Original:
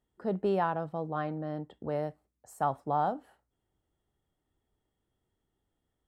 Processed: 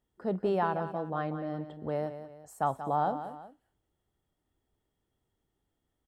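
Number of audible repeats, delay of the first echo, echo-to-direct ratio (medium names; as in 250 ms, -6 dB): 2, 184 ms, -10.5 dB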